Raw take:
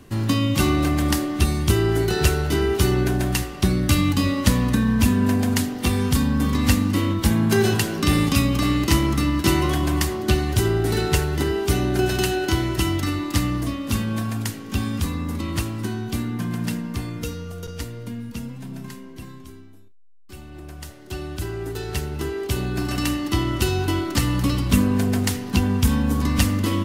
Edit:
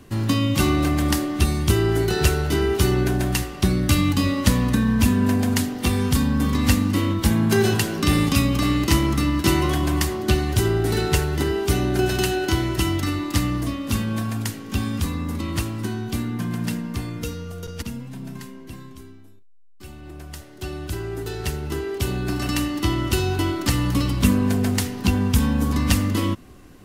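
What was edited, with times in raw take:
0:17.82–0:18.31: remove

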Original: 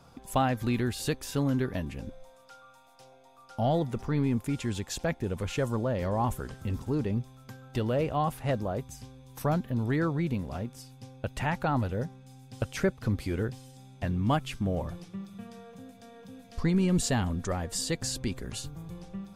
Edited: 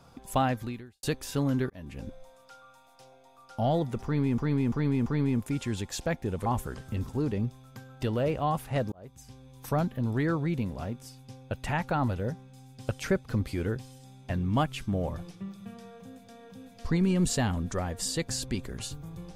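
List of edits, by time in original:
0:00.51–0:01.03: fade out quadratic
0:01.70–0:02.03: fade in
0:04.04–0:04.38: repeat, 4 plays
0:05.44–0:06.19: remove
0:08.65–0:09.22: fade in

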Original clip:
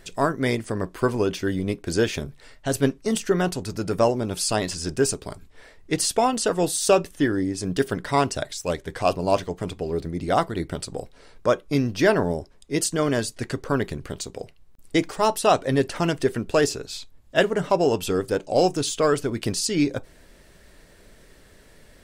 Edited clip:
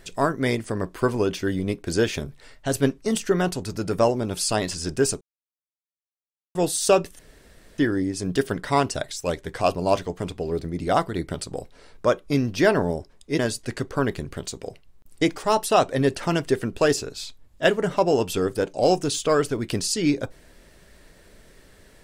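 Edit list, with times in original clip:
0:05.21–0:06.55: silence
0:07.19: splice in room tone 0.59 s
0:12.80–0:13.12: remove

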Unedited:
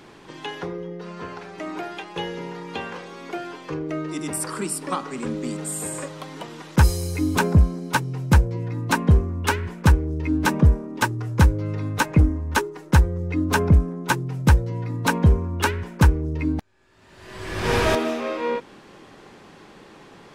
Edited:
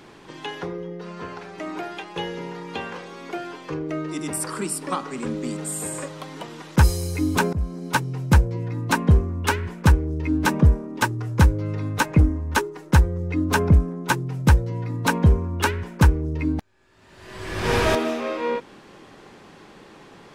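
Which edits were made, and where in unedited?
0:07.53–0:07.87: fade in, from −17.5 dB

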